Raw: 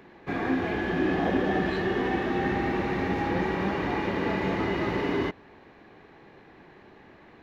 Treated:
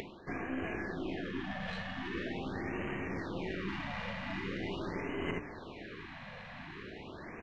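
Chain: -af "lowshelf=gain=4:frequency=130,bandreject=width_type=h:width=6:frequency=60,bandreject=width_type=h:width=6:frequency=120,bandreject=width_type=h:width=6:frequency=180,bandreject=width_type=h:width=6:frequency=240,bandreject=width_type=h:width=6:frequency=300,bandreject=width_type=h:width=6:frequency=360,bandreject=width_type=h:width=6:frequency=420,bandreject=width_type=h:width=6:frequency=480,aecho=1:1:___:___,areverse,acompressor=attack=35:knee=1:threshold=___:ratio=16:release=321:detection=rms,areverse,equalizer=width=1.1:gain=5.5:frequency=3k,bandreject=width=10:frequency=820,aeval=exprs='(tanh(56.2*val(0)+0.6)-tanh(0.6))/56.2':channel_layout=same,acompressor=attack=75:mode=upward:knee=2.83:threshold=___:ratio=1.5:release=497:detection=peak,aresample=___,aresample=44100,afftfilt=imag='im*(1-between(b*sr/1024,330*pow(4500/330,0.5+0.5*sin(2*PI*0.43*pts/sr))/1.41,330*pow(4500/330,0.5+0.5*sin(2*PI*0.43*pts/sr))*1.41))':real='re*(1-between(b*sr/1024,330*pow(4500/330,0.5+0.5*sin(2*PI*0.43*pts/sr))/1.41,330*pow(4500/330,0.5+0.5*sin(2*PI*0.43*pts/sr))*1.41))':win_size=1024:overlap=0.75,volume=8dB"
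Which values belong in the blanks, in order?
80, 0.224, -40dB, -52dB, 22050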